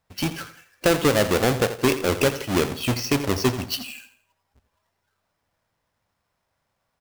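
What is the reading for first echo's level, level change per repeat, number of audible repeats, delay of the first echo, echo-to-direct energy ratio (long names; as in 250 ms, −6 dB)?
−13.0 dB, −9.0 dB, 3, 84 ms, −12.5 dB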